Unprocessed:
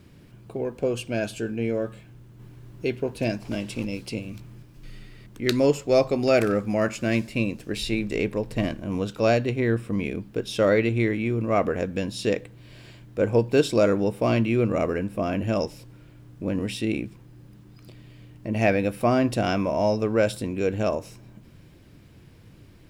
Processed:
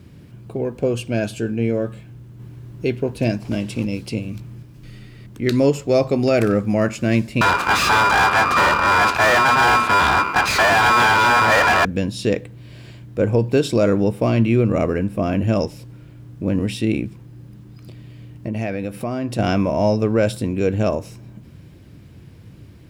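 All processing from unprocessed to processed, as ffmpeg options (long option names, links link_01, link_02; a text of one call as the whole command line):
ffmpeg -i in.wav -filter_complex "[0:a]asettb=1/sr,asplit=3[link_01][link_02][link_03];[link_01]atrim=end=7.414[link_04];[link_02]atrim=start=7.41:end=11.85,asetpts=PTS-STARTPTS,afade=type=in:duration=0.004:curve=qsin,afade=type=out:start_time=4.436:duration=0.004:curve=qsin,aeval=exprs='val(0)*sin(2*PI*1200*n/s)':channel_layout=same,aeval=exprs='max(val(0),0)':channel_layout=same,asplit=2[link_05][link_06];[link_06]highpass=frequency=720:poles=1,volume=37dB,asoftclip=type=tanh:threshold=-9dB[link_07];[link_05][link_07]amix=inputs=2:normalize=0,lowpass=frequency=2400:poles=1,volume=-6dB[link_08];[link_03]atrim=start=11.846[link_09];[link_04][link_08]acrossfade=duration=0.004:curve1=hsin:curve2=qsin[link_10];[link_10][link_09]acrossfade=duration=0.004:curve1=qsin:curve2=hsin,asettb=1/sr,asplit=3[link_11][link_12][link_13];[link_11]atrim=end=18.484[link_14];[link_12]atrim=start=18.48:end=19.39,asetpts=PTS-STARTPTS,afade=type=in:duration=0.004:curve=qsin,afade=type=out:start_time=0.906:duration=0.004:curve=qsin,equalizer=frequency=61:width_type=o:width=1.5:gain=-5,acompressor=threshold=-30dB:ratio=2.5:attack=3.2:release=140:knee=1:detection=peak[link_15];[link_13]atrim=start=19.386[link_16];[link_14][link_15]acrossfade=duration=0.004:curve1=hsin:curve2=qsin[link_17];[link_17][link_16]acrossfade=duration=0.004:curve1=qsin:curve2=hsin,highpass=58,lowshelf=frequency=230:gain=7.5,alimiter=level_in=9dB:limit=-1dB:release=50:level=0:latency=1,volume=-6dB" out.wav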